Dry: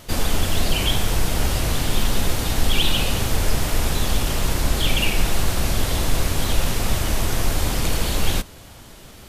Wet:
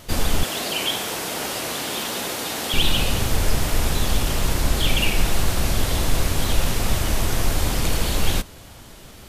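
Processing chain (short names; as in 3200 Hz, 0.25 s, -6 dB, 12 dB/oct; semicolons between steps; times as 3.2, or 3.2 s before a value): 0.43–2.74 HPF 300 Hz 12 dB/oct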